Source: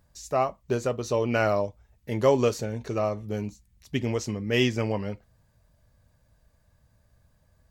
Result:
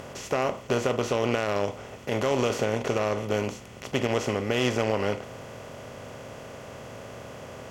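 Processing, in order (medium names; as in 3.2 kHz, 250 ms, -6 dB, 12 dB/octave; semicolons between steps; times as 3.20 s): spectral levelling over time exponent 0.4; Chebyshev shaper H 3 -15 dB, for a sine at -5 dBFS; peak limiter -14.5 dBFS, peak gain reduction 10.5 dB; trim +2 dB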